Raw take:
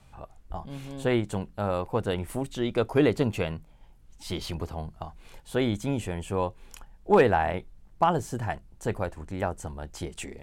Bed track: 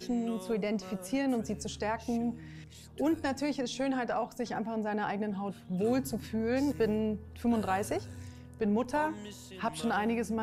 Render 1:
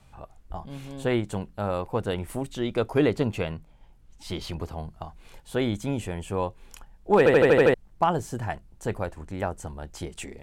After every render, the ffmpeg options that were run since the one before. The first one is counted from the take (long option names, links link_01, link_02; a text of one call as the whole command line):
ffmpeg -i in.wav -filter_complex "[0:a]asettb=1/sr,asplit=3[link_01][link_02][link_03];[link_01]atrim=end=3.054[link_04];[link_02]atrim=start=3.05:end=4.61,asetpts=PTS-STARTPTS,afade=type=in:duration=0.004:curve=qsin,afade=type=out:start_time=1.556:duration=0.004:curve=qsin,highshelf=frequency=8000:gain=-5[link_05];[link_03]atrim=start=4.606[link_06];[link_04][link_05]acrossfade=duration=0.004:curve1=hsin:curve2=qsin[link_07];[link_07][link_06]acrossfade=duration=0.004:curve1=qsin:curve2=hsin,asplit=8[link_08][link_09][link_10][link_11][link_12][link_13][link_14][link_15];[link_08]atrim=end=7.262[link_16];[link_09]atrim=start=7.178:end=7.262[link_17];[link_10]atrim=start=7.178:end=7.262[link_18];[link_11]atrim=start=7.178:end=7.262[link_19];[link_12]atrim=start=7.178:end=7.262[link_20];[link_13]atrim=start=7.178:end=7.262[link_21];[link_14]atrim=start=7.178:end=7.262[link_22];[link_15]atrim=start=7.738[link_23];[link_16][link_17]acrossfade=duration=0.004:curve1=hsin:curve2=hsin[link_24];[link_24][link_18]acrossfade=duration=0.004:curve1=hsin:curve2=hsin[link_25];[link_25][link_19]acrossfade=duration=0.004:curve1=hsin:curve2=hsin[link_26];[link_26][link_20]acrossfade=duration=0.004:curve1=hsin:curve2=hsin[link_27];[link_27][link_21]acrossfade=duration=0.004:curve1=hsin:curve2=hsin[link_28];[link_28][link_22]acrossfade=duration=0.004:curve1=hsin:curve2=hsin[link_29];[link_29][link_23]acrossfade=duration=0.004:curve1=hsin:curve2=hsin" out.wav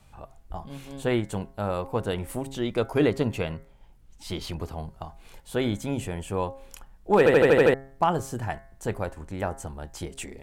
ffmpeg -i in.wav -af "highshelf=frequency=10000:gain=5.5,bandreject=frequency=135.2:width_type=h:width=4,bandreject=frequency=270.4:width_type=h:width=4,bandreject=frequency=405.6:width_type=h:width=4,bandreject=frequency=540.8:width_type=h:width=4,bandreject=frequency=676:width_type=h:width=4,bandreject=frequency=811.2:width_type=h:width=4,bandreject=frequency=946.4:width_type=h:width=4,bandreject=frequency=1081.6:width_type=h:width=4,bandreject=frequency=1216.8:width_type=h:width=4,bandreject=frequency=1352:width_type=h:width=4,bandreject=frequency=1487.2:width_type=h:width=4,bandreject=frequency=1622.4:width_type=h:width=4,bandreject=frequency=1757.6:width_type=h:width=4,bandreject=frequency=1892.8:width_type=h:width=4,bandreject=frequency=2028:width_type=h:width=4,bandreject=frequency=2163.2:width_type=h:width=4" out.wav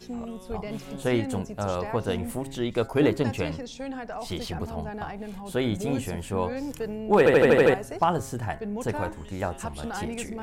ffmpeg -i in.wav -i bed.wav -filter_complex "[1:a]volume=-3.5dB[link_01];[0:a][link_01]amix=inputs=2:normalize=0" out.wav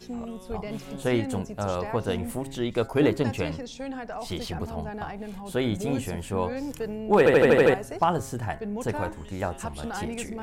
ffmpeg -i in.wav -af anull out.wav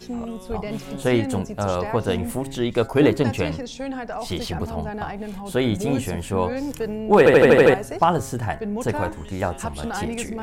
ffmpeg -i in.wav -af "volume=5dB" out.wav